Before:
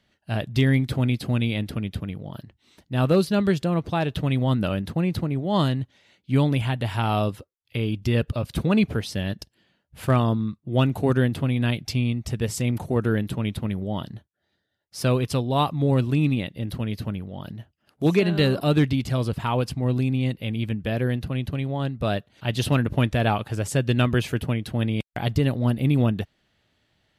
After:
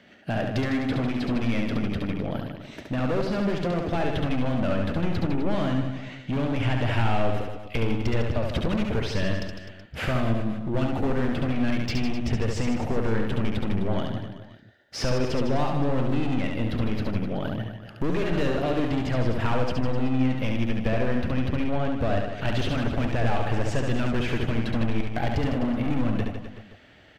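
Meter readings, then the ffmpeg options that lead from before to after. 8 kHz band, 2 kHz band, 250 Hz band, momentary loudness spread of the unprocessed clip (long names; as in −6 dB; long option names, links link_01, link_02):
−6.0 dB, −0.5 dB, −1.5 dB, 10 LU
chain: -filter_complex "[0:a]acrossover=split=6200[link_01][link_02];[link_02]acompressor=threshold=-52dB:ratio=4:attack=1:release=60[link_03];[link_01][link_03]amix=inputs=2:normalize=0,equalizer=frequency=250:width_type=o:width=0.67:gain=5,equalizer=frequency=1000:width_type=o:width=0.67:gain=-9,equalizer=frequency=4000:width_type=o:width=0.67:gain=-6,equalizer=frequency=10000:width_type=o:width=0.67:gain=-7,asplit=2[link_04][link_05];[link_05]highpass=frequency=720:poles=1,volume=28dB,asoftclip=type=tanh:threshold=-7dB[link_06];[link_04][link_06]amix=inputs=2:normalize=0,lowpass=frequency=1400:poles=1,volume=-6dB,acompressor=threshold=-28dB:ratio=3,volume=21.5dB,asoftclip=hard,volume=-21.5dB,asubboost=boost=4.5:cutoff=79,aecho=1:1:70|154|254.8|375.8|520.9:0.631|0.398|0.251|0.158|0.1"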